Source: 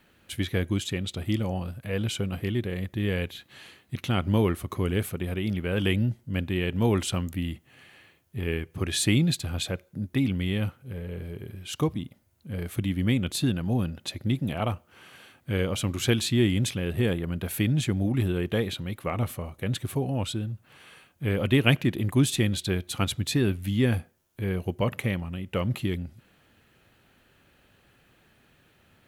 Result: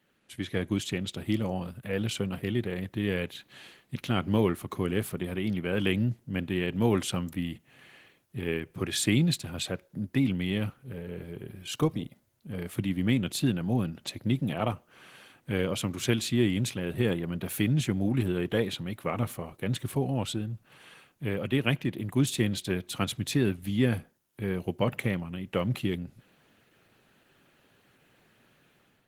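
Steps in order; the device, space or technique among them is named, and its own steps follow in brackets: video call (HPF 110 Hz 24 dB/oct; AGC gain up to 8 dB; gain -8 dB; Opus 16 kbps 48000 Hz)

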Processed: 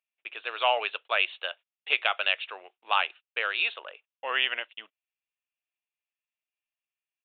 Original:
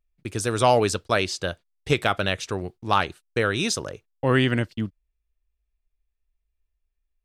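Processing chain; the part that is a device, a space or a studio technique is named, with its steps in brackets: musical greeting card (downsampling 8000 Hz; HPF 630 Hz 24 dB/oct; bell 2700 Hz +11 dB 0.56 oct); gain -5 dB

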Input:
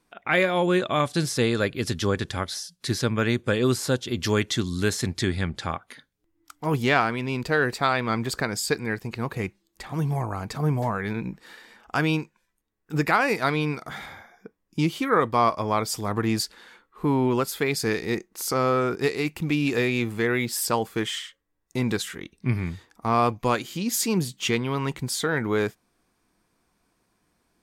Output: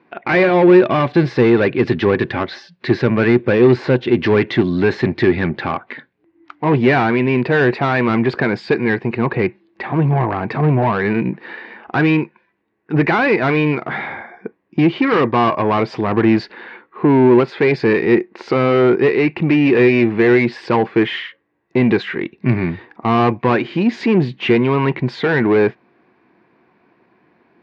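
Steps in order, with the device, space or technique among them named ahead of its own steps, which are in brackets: tone controls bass +6 dB, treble -14 dB; overdrive pedal into a guitar cabinet (overdrive pedal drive 24 dB, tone 5700 Hz, clips at -6.5 dBFS; speaker cabinet 100–3600 Hz, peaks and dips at 130 Hz +4 dB, 240 Hz +3 dB, 360 Hz +8 dB, 1300 Hz -7 dB, 3300 Hz -8 dB)

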